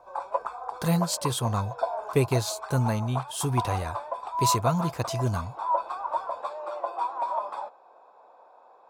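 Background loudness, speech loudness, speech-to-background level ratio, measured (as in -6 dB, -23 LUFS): -32.5 LUFS, -28.5 LUFS, 4.0 dB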